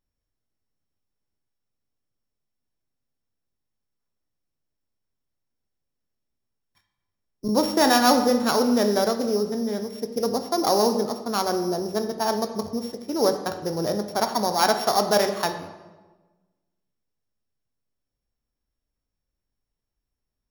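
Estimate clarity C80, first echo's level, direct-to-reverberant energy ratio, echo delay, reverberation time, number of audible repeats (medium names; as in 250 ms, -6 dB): 11.0 dB, no echo, 6.5 dB, no echo, 1.3 s, no echo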